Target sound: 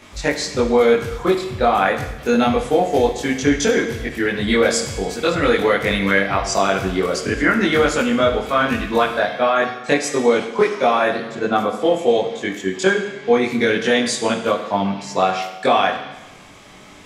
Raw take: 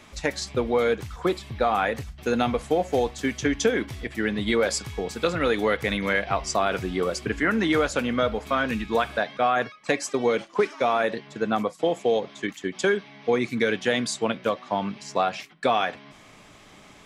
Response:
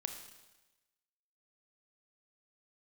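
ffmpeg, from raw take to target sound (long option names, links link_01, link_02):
-filter_complex "[0:a]asplit=2[link_01][link_02];[1:a]atrim=start_sample=2205,asetrate=48510,aresample=44100,adelay=21[link_03];[link_02][link_03]afir=irnorm=-1:irlink=0,volume=5dB[link_04];[link_01][link_04]amix=inputs=2:normalize=0,volume=2dB"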